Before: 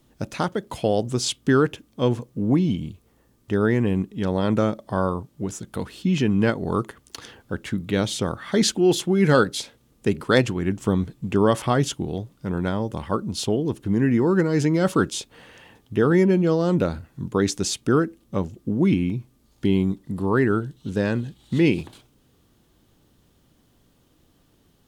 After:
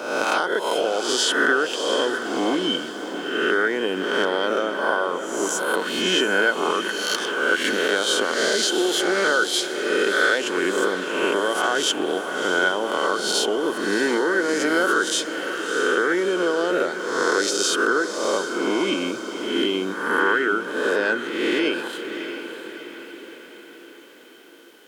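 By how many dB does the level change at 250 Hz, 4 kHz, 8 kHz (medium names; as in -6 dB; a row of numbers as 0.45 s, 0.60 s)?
-4.5 dB, +9.0 dB, +6.0 dB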